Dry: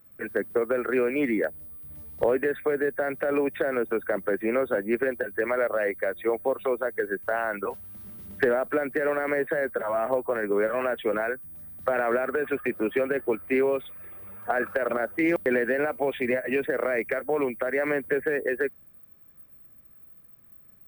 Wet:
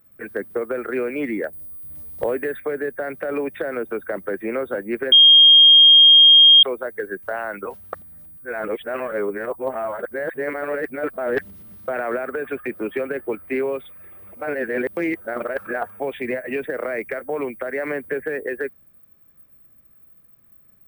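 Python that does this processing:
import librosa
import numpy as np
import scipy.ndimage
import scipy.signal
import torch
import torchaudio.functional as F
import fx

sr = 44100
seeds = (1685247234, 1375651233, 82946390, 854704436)

y = fx.high_shelf(x, sr, hz=5700.0, db=6.5, at=(1.53, 2.6))
y = fx.edit(y, sr, fx.bleep(start_s=5.12, length_s=1.51, hz=3230.0, db=-6.5),
    fx.reverse_span(start_s=7.93, length_s=3.95),
    fx.reverse_span(start_s=14.33, length_s=1.67), tone=tone)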